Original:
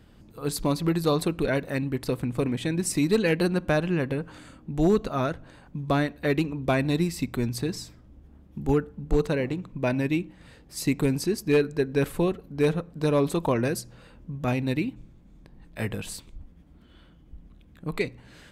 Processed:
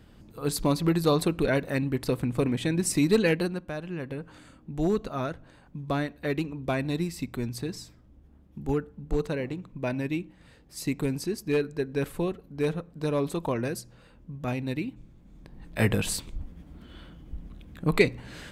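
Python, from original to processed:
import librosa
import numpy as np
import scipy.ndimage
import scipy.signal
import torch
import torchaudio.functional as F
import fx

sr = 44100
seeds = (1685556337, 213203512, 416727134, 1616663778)

y = fx.gain(x, sr, db=fx.line((3.27, 0.5), (3.71, -12.0), (4.35, -4.5), (14.83, -4.5), (15.88, 7.0)))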